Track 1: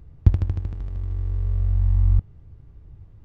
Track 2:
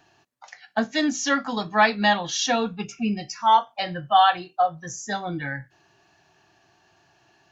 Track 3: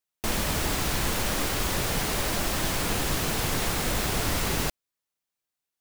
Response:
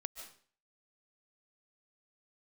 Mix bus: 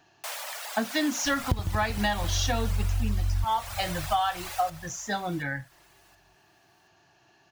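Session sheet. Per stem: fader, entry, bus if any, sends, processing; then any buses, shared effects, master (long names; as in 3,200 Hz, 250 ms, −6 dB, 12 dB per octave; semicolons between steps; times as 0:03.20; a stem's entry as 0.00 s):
+0.5 dB, 1.25 s, no send, echo send −23 dB, no processing
−1.5 dB, 0.00 s, no send, no echo send, no processing
−7.5 dB, 0.00 s, send −5.5 dB, echo send −11 dB, reverb reduction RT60 1.7 s; Butterworth high-pass 570 Hz 48 dB per octave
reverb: on, RT60 0.45 s, pre-delay 105 ms
echo: repeating echo 726 ms, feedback 31%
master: downward compressor 12 to 1, threshold −22 dBFS, peak gain reduction 16 dB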